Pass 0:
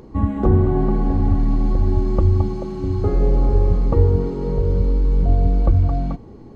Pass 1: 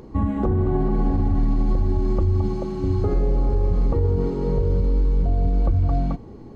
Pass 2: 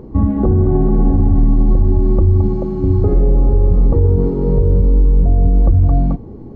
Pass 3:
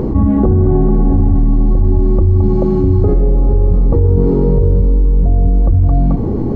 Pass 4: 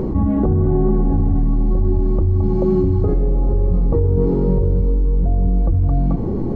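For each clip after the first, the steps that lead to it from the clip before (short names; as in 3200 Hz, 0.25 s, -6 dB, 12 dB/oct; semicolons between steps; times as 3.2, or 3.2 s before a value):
limiter -12.5 dBFS, peak gain reduction 10 dB
tilt shelf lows +8.5 dB, about 1200 Hz
fast leveller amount 70%; gain -1 dB
flange 1.1 Hz, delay 5.2 ms, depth 1.6 ms, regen +70%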